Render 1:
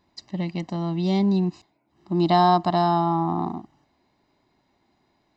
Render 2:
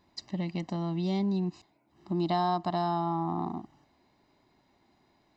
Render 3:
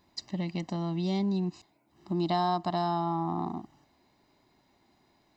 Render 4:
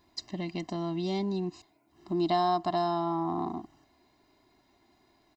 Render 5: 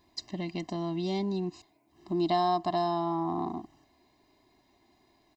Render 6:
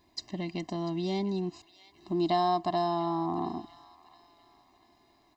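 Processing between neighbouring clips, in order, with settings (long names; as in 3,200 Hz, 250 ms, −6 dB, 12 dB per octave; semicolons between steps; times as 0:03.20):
downward compressor 2 to 1, threshold −33 dBFS, peak gain reduction 10.5 dB
high-shelf EQ 5,700 Hz +6.5 dB
comb filter 2.9 ms, depth 41%
notch filter 1,400 Hz, Q 5.9
delay with a high-pass on its return 692 ms, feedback 39%, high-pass 1,400 Hz, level −15 dB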